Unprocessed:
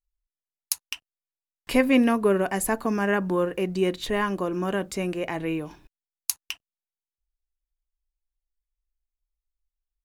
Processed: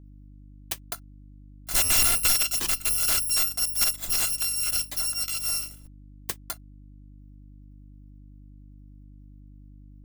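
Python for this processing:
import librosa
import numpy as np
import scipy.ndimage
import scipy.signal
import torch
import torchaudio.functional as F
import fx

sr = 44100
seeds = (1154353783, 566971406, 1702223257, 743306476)

y = fx.bit_reversed(x, sr, seeds[0], block=256)
y = (np.mod(10.0 ** (15.5 / 20.0) * y + 1.0, 2.0) - 1.0) / 10.0 ** (15.5 / 20.0)
y = fx.dmg_buzz(y, sr, base_hz=50.0, harmonics=6, level_db=-48.0, tilt_db=-6, odd_only=False)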